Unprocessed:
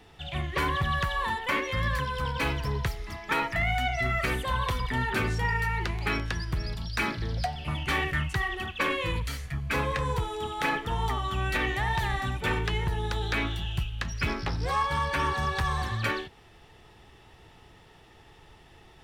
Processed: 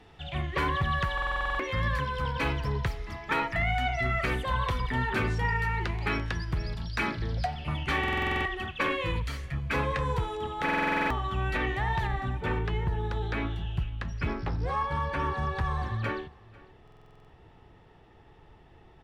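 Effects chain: LPF 3400 Hz 6 dB/oct, from 10.37 s 2000 Hz, from 12.07 s 1100 Hz; echo 0.496 s -23.5 dB; stuck buffer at 1.13/7.99/10.64/16.83, samples 2048, times 9

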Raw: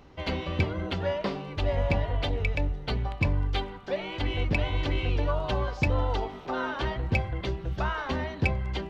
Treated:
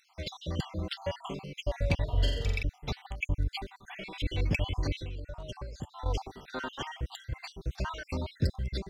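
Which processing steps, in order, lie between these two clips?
random spectral dropouts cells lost 58%; tone controls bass +4 dB, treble +15 dB; 2.04–2.63 flutter echo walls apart 7.5 m, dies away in 0.81 s; 4.95–6.06 compressor 6:1, threshold -32 dBFS, peak gain reduction 13 dB; gain -4.5 dB

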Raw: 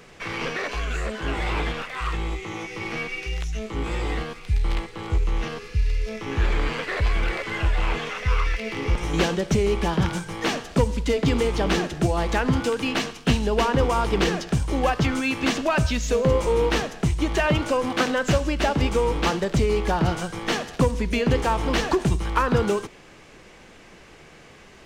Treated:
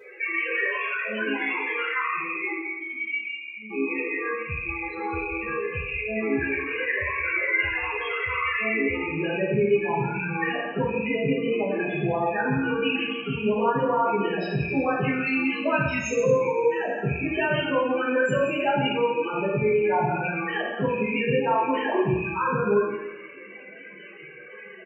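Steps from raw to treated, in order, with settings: rattling part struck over -30 dBFS, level -19 dBFS; HPF 170 Hz 12 dB/oct; bell 2600 Hz +6 dB 2.6 oct; notches 60/120/180/240/300/360 Hz; limiter -15 dBFS, peak gain reduction 12 dB; compressor 5:1, threshold -28 dBFS, peak gain reduction 8 dB; 2.52–3.71 vowel filter i; loudest bins only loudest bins 8; outdoor echo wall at 29 m, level -11 dB; two-slope reverb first 0.79 s, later 2.9 s, from -27 dB, DRR -9.5 dB

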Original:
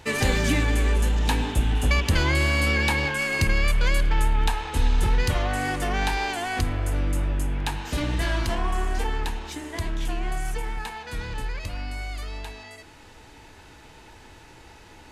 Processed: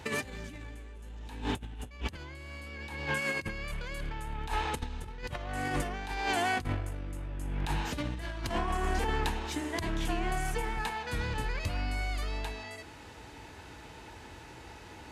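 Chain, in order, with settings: HPF 45 Hz 24 dB/oct; high shelf 2800 Hz -3 dB; negative-ratio compressor -29 dBFS, ratio -0.5; gain -4 dB

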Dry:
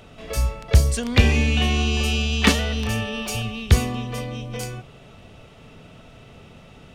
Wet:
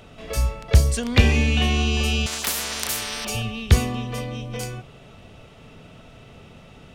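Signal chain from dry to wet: 2.26–3.25 spectral compressor 10:1

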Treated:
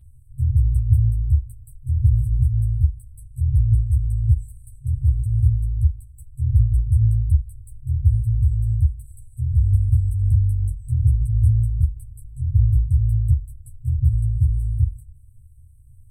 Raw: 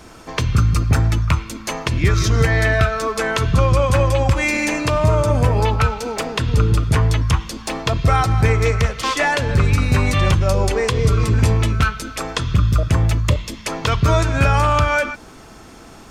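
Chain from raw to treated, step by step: FFT band-reject 130–7700 Hz; resonant high shelf 4900 Hz -11.5 dB, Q 3; ensemble effect; gain +3.5 dB

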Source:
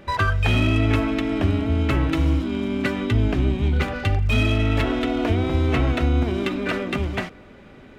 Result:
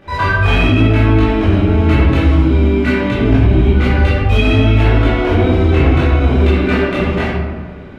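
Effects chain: high shelf 5500 Hz -7 dB; reverb RT60 1.4 s, pre-delay 14 ms, DRR -10 dB; maximiser 0 dB; gain -1 dB

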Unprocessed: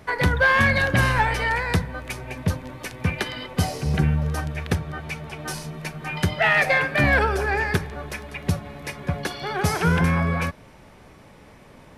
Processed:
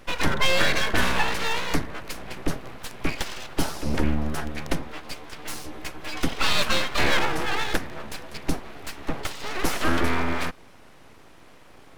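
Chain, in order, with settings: 4.87–5.49 low shelf 160 Hz -10.5 dB; full-wave rectifier

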